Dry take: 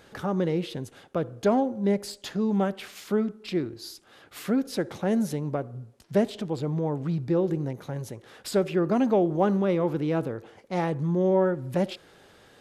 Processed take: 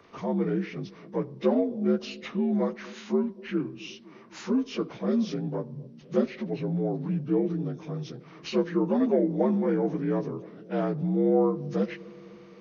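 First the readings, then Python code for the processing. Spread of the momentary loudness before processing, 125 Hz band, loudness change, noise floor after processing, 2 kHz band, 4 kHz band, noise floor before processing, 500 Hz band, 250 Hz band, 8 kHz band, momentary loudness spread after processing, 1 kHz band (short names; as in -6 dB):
14 LU, -2.5 dB, -1.0 dB, -50 dBFS, -3.0 dB, -3.0 dB, -56 dBFS, -1.5 dB, 0.0 dB, n/a, 15 LU, -5.0 dB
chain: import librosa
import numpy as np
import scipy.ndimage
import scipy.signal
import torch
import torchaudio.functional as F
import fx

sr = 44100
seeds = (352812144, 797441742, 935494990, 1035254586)

y = fx.partial_stretch(x, sr, pct=82)
y = fx.echo_bbd(y, sr, ms=254, stages=1024, feedback_pct=70, wet_db=-20.5)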